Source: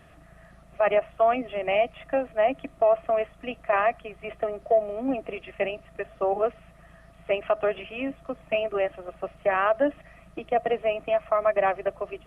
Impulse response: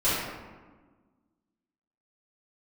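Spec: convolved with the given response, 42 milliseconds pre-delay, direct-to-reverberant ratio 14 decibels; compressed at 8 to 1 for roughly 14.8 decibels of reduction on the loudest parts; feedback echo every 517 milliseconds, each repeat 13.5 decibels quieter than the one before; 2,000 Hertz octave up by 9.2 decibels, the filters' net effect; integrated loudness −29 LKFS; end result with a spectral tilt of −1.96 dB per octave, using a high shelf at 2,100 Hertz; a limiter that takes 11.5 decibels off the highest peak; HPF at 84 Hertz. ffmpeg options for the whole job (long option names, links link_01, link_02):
-filter_complex "[0:a]highpass=84,equalizer=frequency=2000:width_type=o:gain=9,highshelf=frequency=2100:gain=4,acompressor=threshold=-31dB:ratio=8,alimiter=level_in=4dB:limit=-24dB:level=0:latency=1,volume=-4dB,aecho=1:1:517|1034:0.211|0.0444,asplit=2[link_01][link_02];[1:a]atrim=start_sample=2205,adelay=42[link_03];[link_02][link_03]afir=irnorm=-1:irlink=0,volume=-28dB[link_04];[link_01][link_04]amix=inputs=2:normalize=0,volume=10dB"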